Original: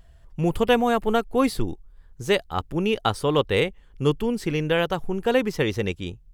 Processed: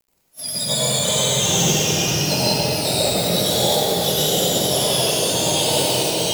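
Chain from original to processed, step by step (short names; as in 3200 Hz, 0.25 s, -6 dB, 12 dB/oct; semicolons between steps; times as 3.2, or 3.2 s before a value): spectrum mirrored in octaves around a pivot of 1300 Hz; band shelf 1800 Hz -15 dB; companded quantiser 4-bit; echoes that change speed 0.272 s, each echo -2 st, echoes 3; pre-echo 46 ms -18 dB; reverb RT60 3.8 s, pre-delay 75 ms, DRR -9.5 dB; gain -1 dB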